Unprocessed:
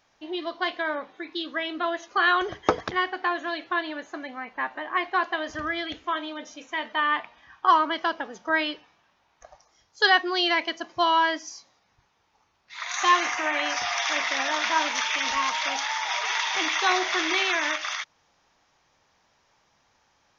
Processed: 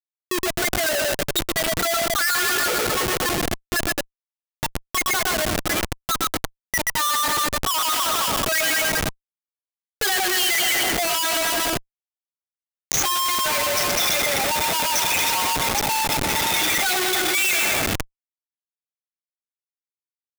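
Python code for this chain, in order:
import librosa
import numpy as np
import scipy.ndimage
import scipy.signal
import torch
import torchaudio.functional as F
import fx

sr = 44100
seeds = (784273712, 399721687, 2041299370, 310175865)

p1 = fx.bin_expand(x, sr, power=3.0)
p2 = scipy.signal.sosfilt(scipy.signal.butter(2, 380.0, 'highpass', fs=sr, output='sos'), p1)
p3 = fx.high_shelf(p2, sr, hz=2500.0, db=-4.5)
p4 = fx.echo_alternate(p3, sr, ms=106, hz=1500.0, feedback_pct=65, wet_db=-6.0)
p5 = fx.leveller(p4, sr, passes=5)
p6 = p5 + fx.echo_single(p5, sr, ms=125, db=-8.5, dry=0)
p7 = fx.schmitt(p6, sr, flips_db=-28.0)
p8 = fx.tilt_eq(p7, sr, slope=2.0)
p9 = fx.notch(p8, sr, hz=1000.0, q=11.0)
p10 = fx.over_compress(p9, sr, threshold_db=-29.0, ratio=-1.0)
p11 = p9 + (p10 * librosa.db_to_amplitude(-2.0))
y = p11 * librosa.db_to_amplitude(-2.5)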